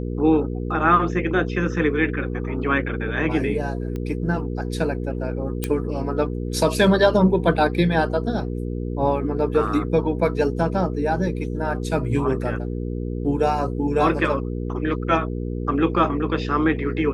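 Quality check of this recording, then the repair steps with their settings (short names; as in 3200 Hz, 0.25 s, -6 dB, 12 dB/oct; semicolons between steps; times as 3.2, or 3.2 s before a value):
hum 60 Hz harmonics 8 -27 dBFS
3.96 pop -19 dBFS
5.64 pop -8 dBFS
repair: de-click; de-hum 60 Hz, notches 8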